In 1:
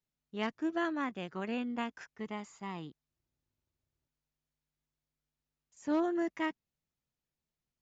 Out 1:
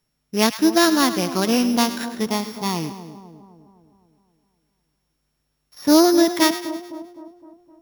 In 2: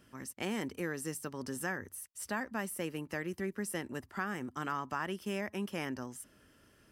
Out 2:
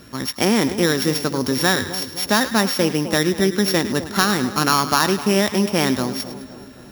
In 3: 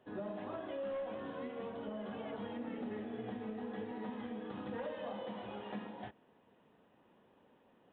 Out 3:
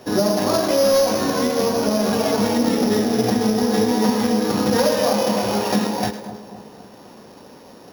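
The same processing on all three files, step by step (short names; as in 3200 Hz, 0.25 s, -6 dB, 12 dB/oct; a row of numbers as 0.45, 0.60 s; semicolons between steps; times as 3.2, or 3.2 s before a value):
sample sorter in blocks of 8 samples; split-band echo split 1000 Hz, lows 0.257 s, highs 0.105 s, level -12 dB; match loudness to -19 LUFS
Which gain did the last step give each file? +17.0, +19.0, +23.5 dB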